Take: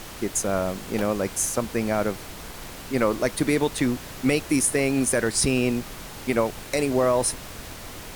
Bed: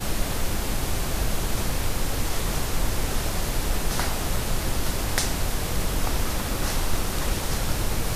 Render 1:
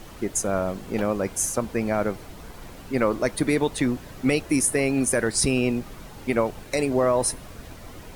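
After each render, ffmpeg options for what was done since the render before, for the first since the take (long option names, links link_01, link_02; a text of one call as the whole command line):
ffmpeg -i in.wav -af "afftdn=noise_reduction=9:noise_floor=-39" out.wav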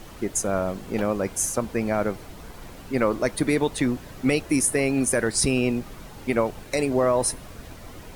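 ffmpeg -i in.wav -af anull out.wav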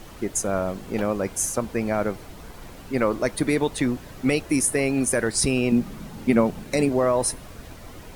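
ffmpeg -i in.wav -filter_complex "[0:a]asettb=1/sr,asplit=3[link_01][link_02][link_03];[link_01]atrim=end=5.724[link_04];[link_02]atrim=start=5.72:end=6.89,asetpts=PTS-STARTPTS,afade=type=in:duration=0.004:curve=qsin,afade=type=out:start_time=1.166:duration=0.004:curve=qsin,equalizer=frequency=200:width=1.5:gain=11.5[link_05];[link_03]atrim=start=6.886[link_06];[link_04][link_05]acrossfade=duration=0.004:curve1=hsin:curve2=qsin[link_07];[link_07][link_06]acrossfade=duration=0.004:curve1=qsin:curve2=hsin" out.wav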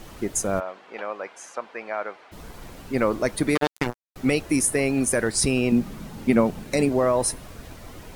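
ffmpeg -i in.wav -filter_complex "[0:a]asplit=3[link_01][link_02][link_03];[link_01]afade=type=out:start_time=0.59:duration=0.02[link_04];[link_02]highpass=750,lowpass=2800,afade=type=in:start_time=0.59:duration=0.02,afade=type=out:start_time=2.31:duration=0.02[link_05];[link_03]afade=type=in:start_time=2.31:duration=0.02[link_06];[link_04][link_05][link_06]amix=inputs=3:normalize=0,asettb=1/sr,asplit=3[link_07][link_08][link_09];[link_07]atrim=end=3.554[link_10];[link_08]atrim=start=3.55:end=4.16,asetpts=PTS-STARTPTS,afade=type=in:duration=0.004:curve=qsin,afade=type=out:start_time=0.606:duration=0.004:curve=qsin,acrusher=bits=2:mix=0:aa=0.5[link_11];[link_09]atrim=start=4.156[link_12];[link_10][link_11]acrossfade=duration=0.004:curve1=hsin:curve2=qsin[link_13];[link_13][link_12]acrossfade=duration=0.004:curve1=qsin:curve2=hsin" out.wav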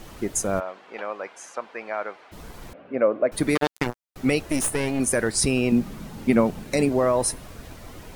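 ffmpeg -i in.wav -filter_complex "[0:a]asettb=1/sr,asplit=3[link_01][link_02][link_03];[link_01]atrim=end=2.734[link_04];[link_02]atrim=start=2.73:end=3.32,asetpts=PTS-STARTPTS,afade=type=in:duration=0.004:curve=qsin,afade=type=out:start_time=0.586:duration=0.004:curve=qsin,highpass=280,equalizer=frequency=370:width_type=q:width=4:gain=-4,equalizer=frequency=580:width_type=q:width=4:gain=8,equalizer=frequency=910:width_type=q:width=4:gain=-9,equalizer=frequency=1300:width_type=q:width=4:gain=-3,equalizer=frequency=1900:width_type=q:width=4:gain=-7,lowpass=frequency=2200:width=0.5412,lowpass=frequency=2200:width=1.3066[link_05];[link_03]atrim=start=3.316[link_06];[link_04][link_05]acrossfade=duration=0.004:curve1=hsin:curve2=qsin[link_07];[link_07][link_06]acrossfade=duration=0.004:curve1=qsin:curve2=hsin,asettb=1/sr,asplit=3[link_08][link_09][link_10];[link_08]atrim=end=4.434[link_11];[link_09]atrim=start=4.43:end=5,asetpts=PTS-STARTPTS,afade=type=in:duration=0.004:curve=qsin,afade=type=out:start_time=0.566:duration=0.004:curve=qsin,aeval=exprs='clip(val(0),-1,0.0398)':channel_layout=same[link_12];[link_10]atrim=start=4.996[link_13];[link_11][link_12]acrossfade=duration=0.004:curve1=hsin:curve2=qsin[link_14];[link_14][link_13]acrossfade=duration=0.004:curve1=qsin:curve2=hsin" out.wav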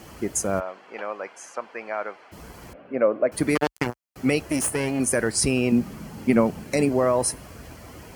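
ffmpeg -i in.wav -af "highpass=frequency=47:width=0.5412,highpass=frequency=47:width=1.3066,bandreject=frequency=3700:width=6.1" out.wav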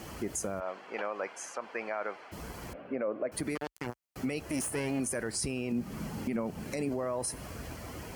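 ffmpeg -i in.wav -af "acompressor=threshold=-26dB:ratio=6,alimiter=limit=-24dB:level=0:latency=1:release=49" out.wav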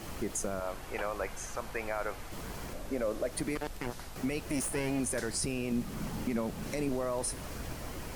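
ffmpeg -i in.wav -i bed.wav -filter_complex "[1:a]volume=-20dB[link_01];[0:a][link_01]amix=inputs=2:normalize=0" out.wav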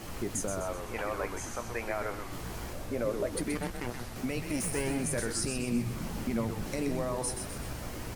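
ffmpeg -i in.wav -filter_complex "[0:a]asplit=2[link_01][link_02];[link_02]adelay=17,volume=-11dB[link_03];[link_01][link_03]amix=inputs=2:normalize=0,asplit=2[link_04][link_05];[link_05]asplit=6[link_06][link_07][link_08][link_09][link_10][link_11];[link_06]adelay=127,afreqshift=-120,volume=-6.5dB[link_12];[link_07]adelay=254,afreqshift=-240,volume=-13.1dB[link_13];[link_08]adelay=381,afreqshift=-360,volume=-19.6dB[link_14];[link_09]adelay=508,afreqshift=-480,volume=-26.2dB[link_15];[link_10]adelay=635,afreqshift=-600,volume=-32.7dB[link_16];[link_11]adelay=762,afreqshift=-720,volume=-39.3dB[link_17];[link_12][link_13][link_14][link_15][link_16][link_17]amix=inputs=6:normalize=0[link_18];[link_04][link_18]amix=inputs=2:normalize=0" out.wav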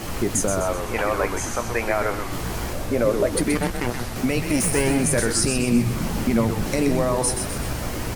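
ffmpeg -i in.wav -af "volume=11.5dB" out.wav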